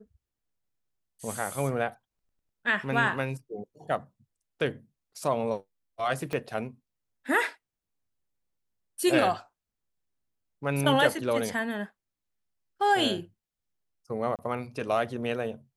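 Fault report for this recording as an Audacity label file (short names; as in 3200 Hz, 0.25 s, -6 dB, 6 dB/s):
6.330000	6.330000	pop -18 dBFS
14.360000	14.390000	gap 28 ms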